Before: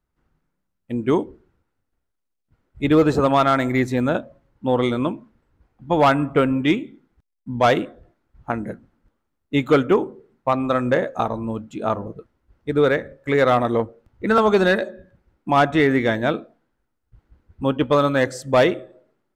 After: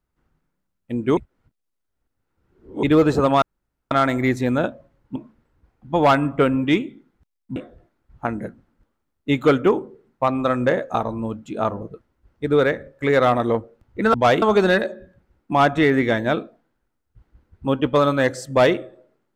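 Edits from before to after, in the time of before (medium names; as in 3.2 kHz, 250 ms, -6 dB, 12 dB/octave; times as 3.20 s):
1.17–2.83 s: reverse
3.42 s: insert room tone 0.49 s
4.67–5.13 s: delete
7.53–7.81 s: move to 14.39 s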